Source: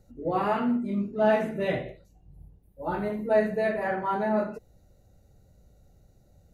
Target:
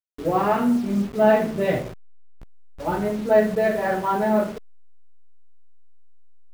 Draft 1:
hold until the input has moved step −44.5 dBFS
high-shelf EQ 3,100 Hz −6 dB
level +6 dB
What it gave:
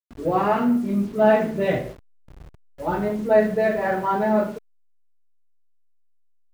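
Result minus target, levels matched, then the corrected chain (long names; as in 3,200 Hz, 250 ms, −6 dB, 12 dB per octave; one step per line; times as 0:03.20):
hold until the input has moved: distortion −8 dB
hold until the input has moved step −38 dBFS
high-shelf EQ 3,100 Hz −6 dB
level +6 dB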